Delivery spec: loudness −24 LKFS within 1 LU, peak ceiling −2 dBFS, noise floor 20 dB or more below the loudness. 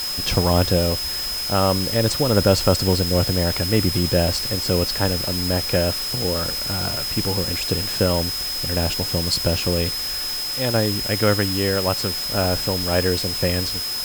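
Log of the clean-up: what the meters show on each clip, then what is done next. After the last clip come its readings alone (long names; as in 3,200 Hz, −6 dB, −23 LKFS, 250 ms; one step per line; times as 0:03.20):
interfering tone 5,100 Hz; level of the tone −25 dBFS; background noise floor −26 dBFS; target noise floor −40 dBFS; integrated loudness −20.0 LKFS; sample peak −4.0 dBFS; target loudness −24.0 LKFS
→ notch filter 5,100 Hz, Q 30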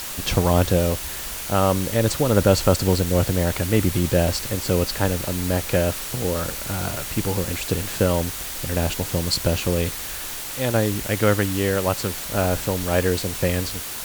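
interfering tone none found; background noise floor −32 dBFS; target noise floor −42 dBFS
→ broadband denoise 10 dB, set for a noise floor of −32 dBFS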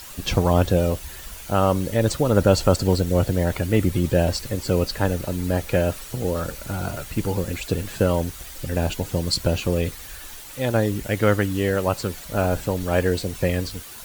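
background noise floor −39 dBFS; target noise floor −43 dBFS
→ broadband denoise 6 dB, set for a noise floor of −39 dBFS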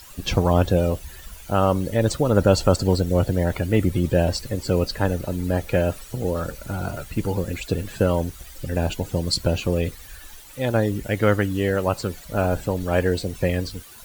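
background noise floor −43 dBFS; integrated loudness −23.0 LKFS; sample peak −4.5 dBFS; target loudness −24.0 LKFS
→ level −1 dB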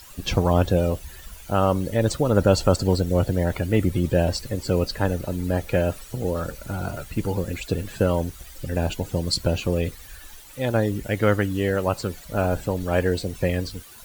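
integrated loudness −24.0 LKFS; sample peak −5.5 dBFS; background noise floor −44 dBFS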